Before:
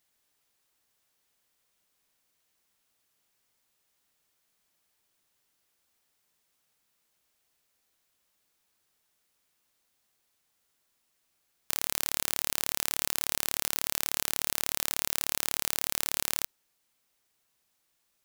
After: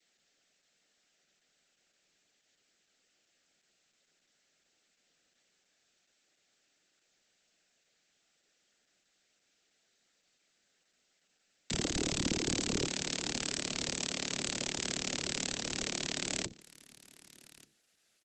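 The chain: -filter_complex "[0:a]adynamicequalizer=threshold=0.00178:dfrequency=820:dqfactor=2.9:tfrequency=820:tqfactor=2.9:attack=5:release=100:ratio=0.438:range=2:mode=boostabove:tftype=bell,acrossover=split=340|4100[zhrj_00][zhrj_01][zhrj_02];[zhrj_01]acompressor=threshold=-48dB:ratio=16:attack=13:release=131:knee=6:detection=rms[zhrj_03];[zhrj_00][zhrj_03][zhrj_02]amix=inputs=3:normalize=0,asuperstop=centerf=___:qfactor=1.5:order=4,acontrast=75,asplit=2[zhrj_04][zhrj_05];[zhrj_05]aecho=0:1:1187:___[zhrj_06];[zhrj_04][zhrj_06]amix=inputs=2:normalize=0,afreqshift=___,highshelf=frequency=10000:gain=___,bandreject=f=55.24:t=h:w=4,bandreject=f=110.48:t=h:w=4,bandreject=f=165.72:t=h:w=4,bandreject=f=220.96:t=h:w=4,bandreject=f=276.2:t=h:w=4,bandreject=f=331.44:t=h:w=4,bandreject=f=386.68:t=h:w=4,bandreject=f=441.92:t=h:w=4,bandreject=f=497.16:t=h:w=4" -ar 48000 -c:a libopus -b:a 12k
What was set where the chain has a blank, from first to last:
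850, 0.0841, 150, -6.5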